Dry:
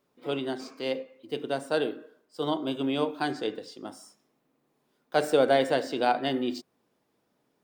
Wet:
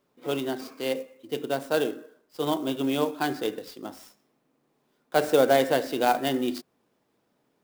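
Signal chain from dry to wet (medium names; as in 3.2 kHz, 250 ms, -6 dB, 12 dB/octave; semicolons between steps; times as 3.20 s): sampling jitter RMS 0.023 ms; trim +2 dB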